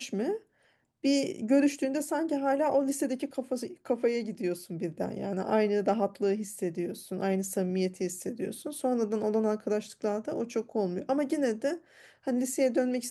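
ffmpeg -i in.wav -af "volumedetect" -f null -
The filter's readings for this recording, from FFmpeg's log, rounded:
mean_volume: -30.0 dB
max_volume: -13.9 dB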